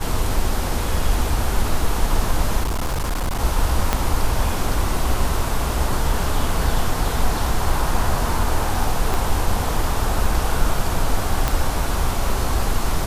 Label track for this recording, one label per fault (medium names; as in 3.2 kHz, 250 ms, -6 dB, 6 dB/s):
2.630000	3.400000	clipped -18.5 dBFS
3.930000	3.930000	pop -3 dBFS
9.140000	9.140000	pop
11.480000	11.480000	pop